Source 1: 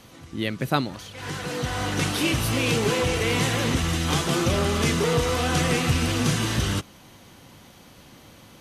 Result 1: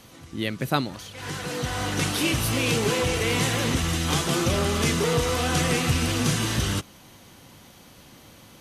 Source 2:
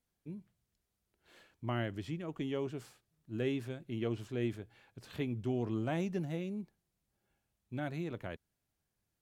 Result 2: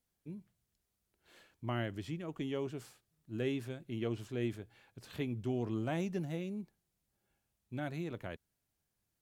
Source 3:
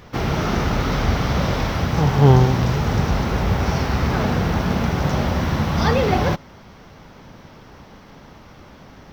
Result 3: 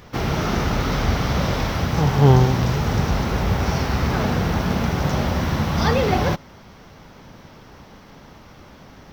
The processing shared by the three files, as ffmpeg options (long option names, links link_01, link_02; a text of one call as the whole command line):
ffmpeg -i in.wav -af "highshelf=frequency=5500:gain=4,volume=-1dB" out.wav